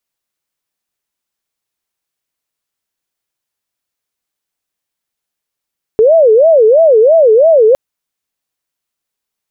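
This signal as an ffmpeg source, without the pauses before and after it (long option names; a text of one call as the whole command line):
ffmpeg -f lavfi -i "aevalsrc='0.668*sin(2*PI*(546*t-117/(2*PI*3)*sin(2*PI*3*t)))':duration=1.76:sample_rate=44100" out.wav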